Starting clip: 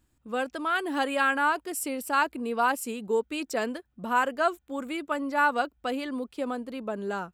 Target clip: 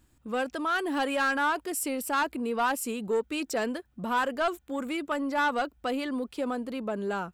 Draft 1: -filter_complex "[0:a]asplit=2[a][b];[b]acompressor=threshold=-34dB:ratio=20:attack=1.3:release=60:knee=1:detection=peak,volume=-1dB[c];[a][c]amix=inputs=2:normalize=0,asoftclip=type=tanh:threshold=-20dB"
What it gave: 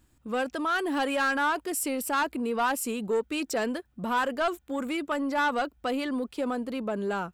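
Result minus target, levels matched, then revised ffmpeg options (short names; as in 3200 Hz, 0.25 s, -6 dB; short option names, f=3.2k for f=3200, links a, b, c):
compressor: peak gain reduction -6.5 dB
-filter_complex "[0:a]asplit=2[a][b];[b]acompressor=threshold=-41dB:ratio=20:attack=1.3:release=60:knee=1:detection=peak,volume=-1dB[c];[a][c]amix=inputs=2:normalize=0,asoftclip=type=tanh:threshold=-20dB"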